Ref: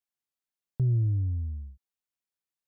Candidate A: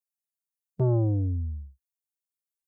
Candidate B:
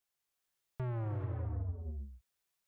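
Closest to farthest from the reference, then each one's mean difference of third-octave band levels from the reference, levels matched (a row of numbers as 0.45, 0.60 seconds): A, B; 3.0, 12.5 decibels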